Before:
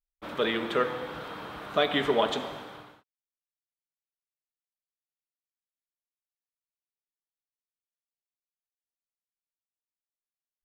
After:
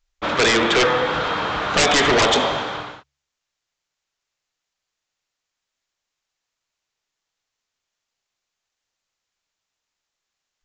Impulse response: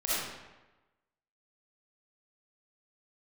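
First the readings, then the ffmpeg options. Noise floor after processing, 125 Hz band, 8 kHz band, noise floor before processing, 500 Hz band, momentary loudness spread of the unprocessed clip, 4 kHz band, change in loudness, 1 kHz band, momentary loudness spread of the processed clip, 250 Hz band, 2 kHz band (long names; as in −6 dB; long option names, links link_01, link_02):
−83 dBFS, +13.0 dB, +27.0 dB, below −85 dBFS, +8.5 dB, 14 LU, +13.5 dB, +11.5 dB, +12.0 dB, 11 LU, +9.0 dB, +14.5 dB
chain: -af "equalizer=frequency=240:width_type=o:width=2.1:gain=-6,bandreject=frequency=69.11:width_type=h:width=4,bandreject=frequency=138.22:width_type=h:width=4,aresample=16000,aeval=exprs='0.251*sin(PI/2*5.62*val(0)/0.251)':channel_layout=same,aresample=44100"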